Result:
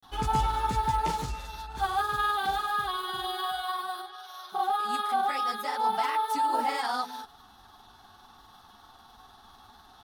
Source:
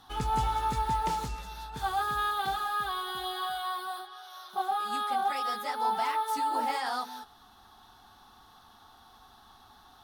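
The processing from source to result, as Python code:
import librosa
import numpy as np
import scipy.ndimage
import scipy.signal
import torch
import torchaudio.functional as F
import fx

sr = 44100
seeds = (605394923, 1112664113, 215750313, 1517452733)

y = fx.granulator(x, sr, seeds[0], grain_ms=100.0, per_s=20.0, spray_ms=25.0, spread_st=0)
y = F.gain(torch.from_numpy(y), 3.5).numpy()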